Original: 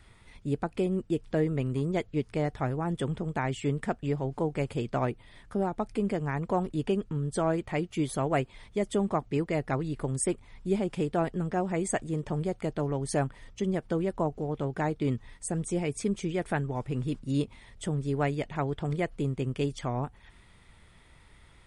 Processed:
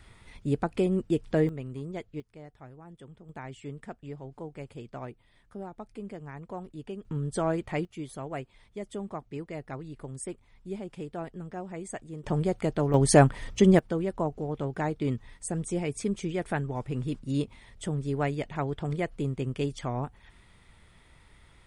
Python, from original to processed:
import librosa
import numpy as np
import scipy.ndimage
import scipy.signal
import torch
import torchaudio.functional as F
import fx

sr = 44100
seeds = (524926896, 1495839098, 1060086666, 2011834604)

y = fx.gain(x, sr, db=fx.steps((0.0, 2.5), (1.49, -8.0), (2.2, -18.0), (3.29, -11.0), (7.05, -0.5), (7.85, -9.0), (12.24, 3.5), (12.94, 10.5), (13.79, -0.5)))